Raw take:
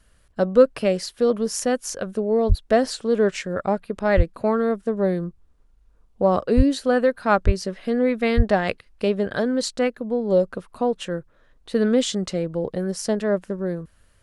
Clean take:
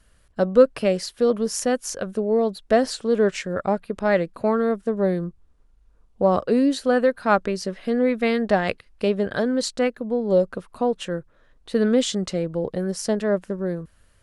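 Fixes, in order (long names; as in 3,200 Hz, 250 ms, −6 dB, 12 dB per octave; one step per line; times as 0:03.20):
high-pass at the plosives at 0:02.48/0:04.16/0:06.56/0:07.45/0:08.36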